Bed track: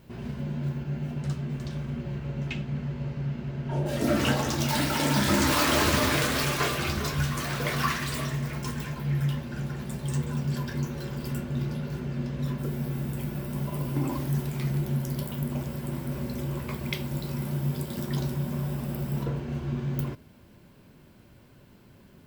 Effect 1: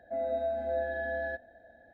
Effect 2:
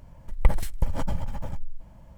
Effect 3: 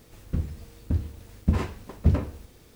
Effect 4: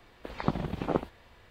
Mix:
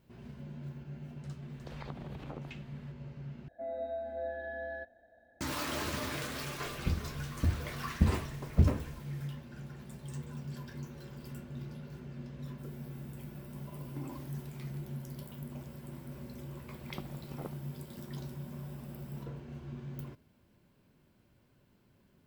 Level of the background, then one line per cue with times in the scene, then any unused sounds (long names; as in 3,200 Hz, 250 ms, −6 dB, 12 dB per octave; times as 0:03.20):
bed track −13 dB
0:01.42: mix in 4 −6 dB + downward compressor, threshold −35 dBFS
0:03.48: overwrite with 1 −6.5 dB
0:06.53: mix in 3 −4 dB
0:16.50: mix in 4 −16 dB
not used: 2